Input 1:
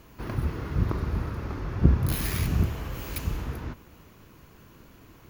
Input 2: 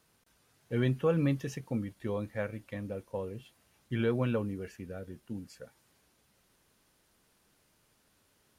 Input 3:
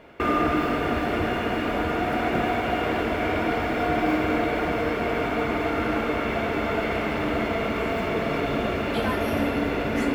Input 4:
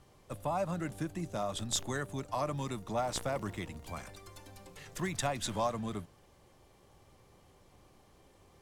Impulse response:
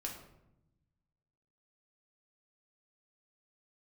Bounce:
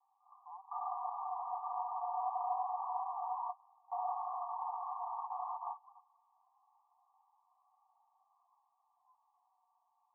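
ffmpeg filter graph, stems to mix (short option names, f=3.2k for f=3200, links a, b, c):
-filter_complex "[0:a]adelay=50,volume=-15dB[a];[1:a]lowpass=2.4k,equalizer=f=240:w=2.9:g=10,volume=-1.5dB,asplit=2[b][c];[2:a]volume=0dB[d];[3:a]asoftclip=type=hard:threshold=-37dB,volume=-2.5dB[e];[c]apad=whole_len=447376[f];[d][f]sidechaingate=range=-35dB:threshold=-53dB:ratio=16:detection=peak[g];[a][b][g][e]amix=inputs=4:normalize=0,flanger=delay=1.4:depth=3.1:regen=-50:speed=0.25:shape=sinusoidal,asuperpass=centerf=930:order=20:qfactor=2.1"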